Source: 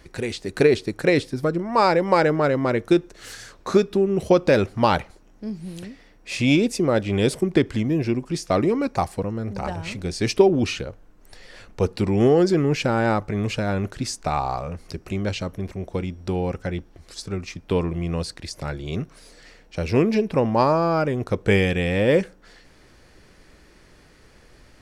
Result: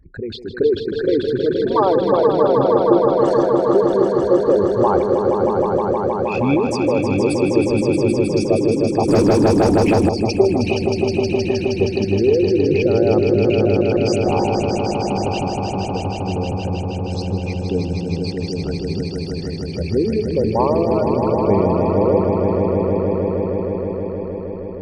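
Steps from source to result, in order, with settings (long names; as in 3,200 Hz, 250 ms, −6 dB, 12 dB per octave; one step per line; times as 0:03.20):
spectral envelope exaggerated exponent 3
echo that builds up and dies away 157 ms, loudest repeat 5, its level −6 dB
0:09.08–0:10.09: leveller curve on the samples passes 2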